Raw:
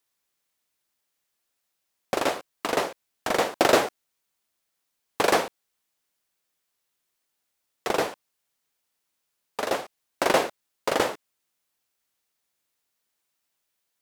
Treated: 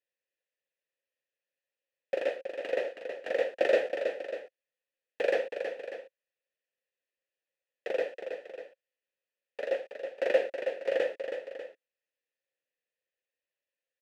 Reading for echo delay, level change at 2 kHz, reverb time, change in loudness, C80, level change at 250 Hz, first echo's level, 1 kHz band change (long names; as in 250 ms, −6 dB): 322 ms, −7.0 dB, no reverb audible, −6.5 dB, no reverb audible, −14.0 dB, −7.5 dB, −16.5 dB